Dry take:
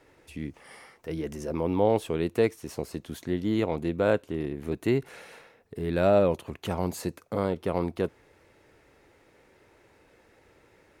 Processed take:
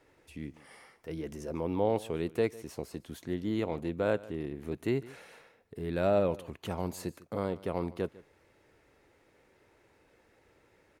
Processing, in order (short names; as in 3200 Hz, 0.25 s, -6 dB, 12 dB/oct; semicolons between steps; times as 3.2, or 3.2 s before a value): echo 0.15 s -20 dB; gain -5.5 dB